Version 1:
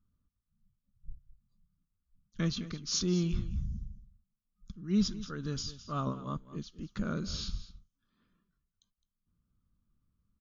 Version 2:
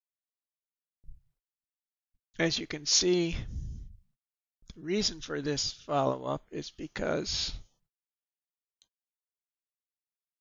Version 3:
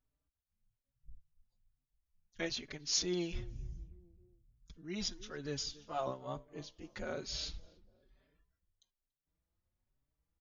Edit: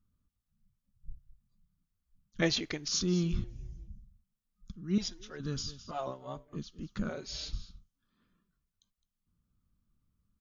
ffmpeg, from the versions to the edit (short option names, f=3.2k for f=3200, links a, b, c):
-filter_complex "[2:a]asplit=4[a][b][c][d];[0:a]asplit=6[e][f][g][h][i][j];[e]atrim=end=2.422[k];[1:a]atrim=start=2.418:end=2.882[l];[f]atrim=start=2.878:end=3.442[m];[a]atrim=start=3.438:end=3.882[n];[g]atrim=start=3.878:end=4.982[o];[b]atrim=start=4.978:end=5.402[p];[h]atrim=start=5.398:end=5.912[q];[c]atrim=start=5.908:end=6.532[r];[i]atrim=start=6.528:end=7.092[s];[d]atrim=start=7.088:end=7.532[t];[j]atrim=start=7.528[u];[k][l]acrossfade=d=0.004:c1=hsin:c2=hsin[v];[v][m]acrossfade=d=0.004:c1=hsin:c2=hsin[w];[w][n]acrossfade=d=0.004:c1=hsin:c2=hsin[x];[x][o]acrossfade=d=0.004:c1=hsin:c2=hsin[y];[y][p]acrossfade=d=0.004:c1=hsin:c2=hsin[z];[z][q]acrossfade=d=0.004:c1=hsin:c2=hsin[aa];[aa][r]acrossfade=d=0.004:c1=hsin:c2=hsin[ab];[ab][s]acrossfade=d=0.004:c1=hsin:c2=hsin[ac];[ac][t]acrossfade=d=0.004:c1=hsin:c2=hsin[ad];[ad][u]acrossfade=d=0.004:c1=hsin:c2=hsin"